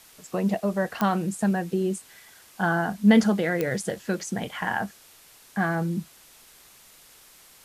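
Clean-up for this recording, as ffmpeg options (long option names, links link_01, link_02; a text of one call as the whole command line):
ffmpeg -i in.wav -af "adeclick=threshold=4,afwtdn=0.0028" out.wav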